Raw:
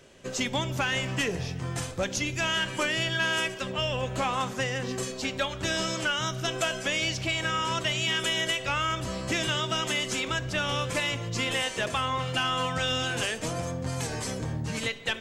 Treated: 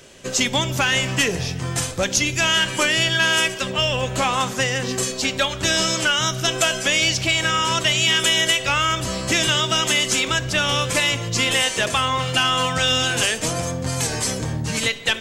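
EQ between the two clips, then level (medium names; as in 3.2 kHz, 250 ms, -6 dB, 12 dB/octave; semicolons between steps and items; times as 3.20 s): treble shelf 3.1 kHz +7.5 dB; +6.5 dB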